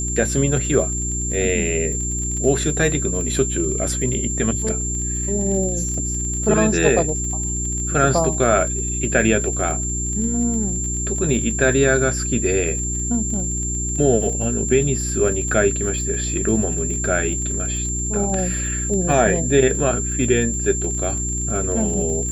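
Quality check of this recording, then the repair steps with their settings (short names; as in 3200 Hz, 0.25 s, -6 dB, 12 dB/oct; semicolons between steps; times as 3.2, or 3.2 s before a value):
crackle 29/s -27 dBFS
hum 60 Hz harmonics 6 -26 dBFS
tone 7300 Hz -24 dBFS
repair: de-click; de-hum 60 Hz, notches 6; notch 7300 Hz, Q 30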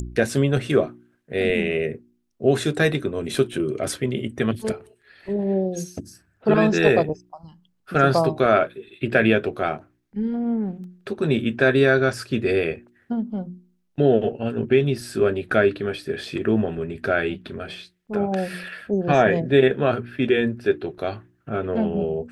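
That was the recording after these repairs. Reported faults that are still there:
none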